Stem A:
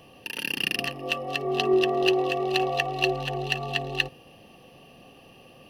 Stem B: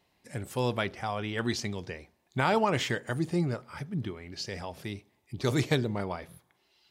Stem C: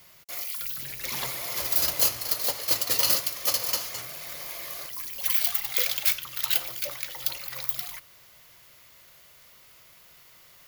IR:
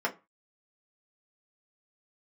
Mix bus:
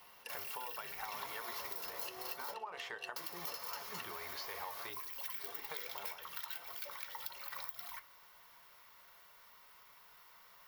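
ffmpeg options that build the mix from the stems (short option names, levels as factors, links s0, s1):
-filter_complex "[0:a]lowpass=11000,aemphasis=mode=production:type=riaa,volume=0.126,asplit=2[s0][s1];[s1]volume=0.158[s2];[1:a]lowshelf=f=320:t=q:w=1.5:g=-8.5,acompressor=threshold=0.0112:ratio=6,volume=1.06,asplit=3[s3][s4][s5];[s4]volume=0.106[s6];[2:a]volume=0.376,asplit=3[s7][s8][s9];[s7]atrim=end=2.54,asetpts=PTS-STARTPTS,afade=t=out:st=2.536:d=0.004:c=hsin[s10];[s8]atrim=start=2.54:end=3.16,asetpts=PTS-STARTPTS,volume=0[s11];[s9]atrim=start=3.16,asetpts=PTS-STARTPTS,afade=t=in:d=0.004:c=hsin[s12];[s10][s11][s12]concat=n=3:v=0:a=1,asplit=2[s13][s14];[s14]volume=0.316[s15];[s5]apad=whole_len=251338[s16];[s0][s16]sidechaincompress=threshold=0.002:ratio=8:attack=16:release=160[s17];[s3][s13]amix=inputs=2:normalize=0,equalizer=f=125:t=o:w=1:g=-12,equalizer=f=250:t=o:w=1:g=-12,equalizer=f=500:t=o:w=1:g=-11,equalizer=f=1000:t=o:w=1:g=12,equalizer=f=2000:t=o:w=1:g=-3,equalizer=f=8000:t=o:w=1:g=-11,acompressor=threshold=0.0158:ratio=6,volume=1[s18];[3:a]atrim=start_sample=2205[s19];[s2][s6][s15]amix=inputs=3:normalize=0[s20];[s20][s19]afir=irnorm=-1:irlink=0[s21];[s17][s18][s21]amix=inputs=3:normalize=0,acompressor=threshold=0.01:ratio=6"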